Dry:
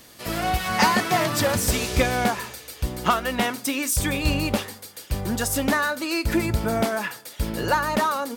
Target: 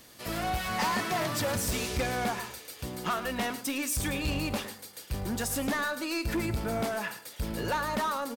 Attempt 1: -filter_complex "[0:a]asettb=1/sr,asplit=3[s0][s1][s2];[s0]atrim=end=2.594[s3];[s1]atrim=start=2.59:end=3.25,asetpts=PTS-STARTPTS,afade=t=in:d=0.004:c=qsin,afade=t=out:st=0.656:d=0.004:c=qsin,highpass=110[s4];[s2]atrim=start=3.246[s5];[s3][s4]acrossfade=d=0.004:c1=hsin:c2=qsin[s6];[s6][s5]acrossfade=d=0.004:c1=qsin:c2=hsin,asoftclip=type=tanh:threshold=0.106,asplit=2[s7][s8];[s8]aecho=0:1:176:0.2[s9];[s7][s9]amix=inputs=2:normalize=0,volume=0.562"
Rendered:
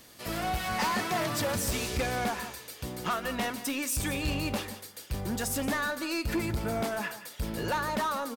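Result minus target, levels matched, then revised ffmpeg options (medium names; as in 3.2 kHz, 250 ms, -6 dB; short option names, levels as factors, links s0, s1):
echo 68 ms late
-filter_complex "[0:a]asettb=1/sr,asplit=3[s0][s1][s2];[s0]atrim=end=2.594[s3];[s1]atrim=start=2.59:end=3.25,asetpts=PTS-STARTPTS,afade=t=in:d=0.004:c=qsin,afade=t=out:st=0.656:d=0.004:c=qsin,highpass=110[s4];[s2]atrim=start=3.246[s5];[s3][s4]acrossfade=d=0.004:c1=hsin:c2=qsin[s6];[s6][s5]acrossfade=d=0.004:c1=qsin:c2=hsin,asoftclip=type=tanh:threshold=0.106,asplit=2[s7][s8];[s8]aecho=0:1:108:0.2[s9];[s7][s9]amix=inputs=2:normalize=0,volume=0.562"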